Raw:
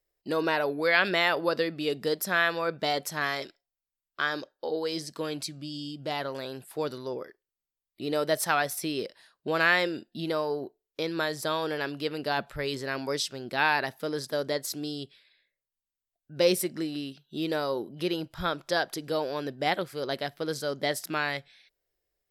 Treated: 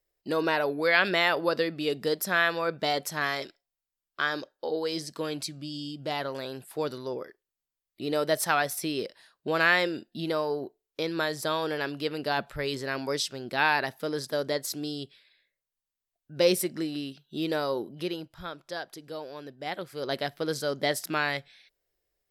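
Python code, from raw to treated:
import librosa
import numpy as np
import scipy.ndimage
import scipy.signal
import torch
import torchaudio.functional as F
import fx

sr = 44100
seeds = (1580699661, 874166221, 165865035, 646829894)

y = fx.gain(x, sr, db=fx.line((17.87, 0.5), (18.43, -9.0), (19.62, -9.0), (20.15, 1.5)))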